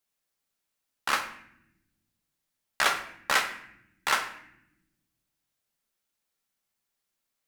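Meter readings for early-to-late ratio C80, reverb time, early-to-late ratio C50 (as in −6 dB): 12.5 dB, non-exponential decay, 9.5 dB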